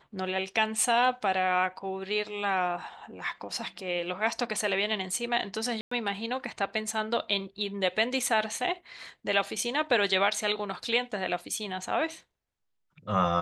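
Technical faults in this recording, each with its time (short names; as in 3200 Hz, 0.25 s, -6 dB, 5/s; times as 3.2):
5.81–5.91 gap 0.104 s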